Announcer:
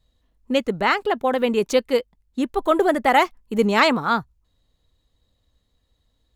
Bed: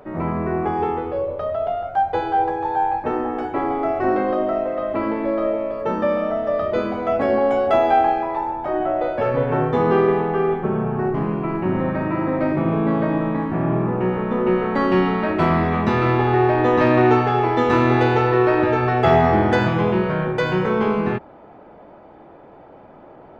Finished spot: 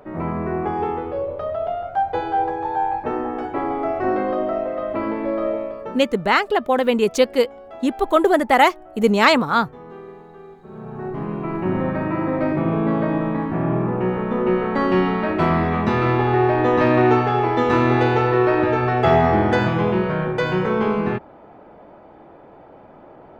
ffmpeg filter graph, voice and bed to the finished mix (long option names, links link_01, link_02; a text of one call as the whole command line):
ffmpeg -i stem1.wav -i stem2.wav -filter_complex "[0:a]adelay=5450,volume=2.5dB[link_01];[1:a]volume=20dB,afade=type=out:start_time=5.56:duration=0.51:silence=0.0944061,afade=type=in:start_time=10.64:duration=1.05:silence=0.0841395[link_02];[link_01][link_02]amix=inputs=2:normalize=0" out.wav